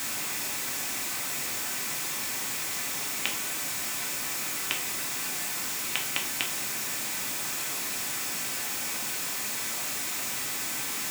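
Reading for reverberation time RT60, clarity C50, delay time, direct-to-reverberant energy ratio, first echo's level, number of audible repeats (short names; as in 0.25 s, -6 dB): 0.45 s, 11.5 dB, none, 0.0 dB, none, none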